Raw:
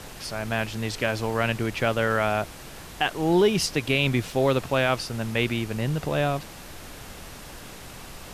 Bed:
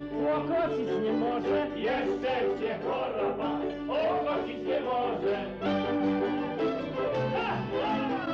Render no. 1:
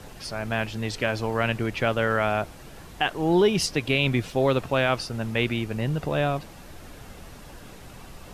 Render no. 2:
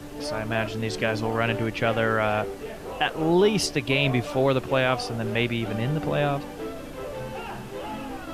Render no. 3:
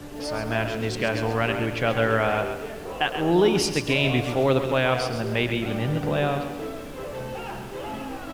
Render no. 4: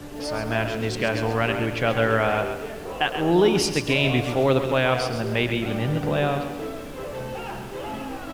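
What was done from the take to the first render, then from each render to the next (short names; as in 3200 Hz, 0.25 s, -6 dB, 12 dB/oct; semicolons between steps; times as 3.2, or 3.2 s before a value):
denoiser 7 dB, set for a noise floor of -42 dBFS
add bed -5.5 dB
feedback echo 0.109 s, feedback 54%, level -14.5 dB; lo-fi delay 0.134 s, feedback 35%, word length 8-bit, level -8.5 dB
gain +1 dB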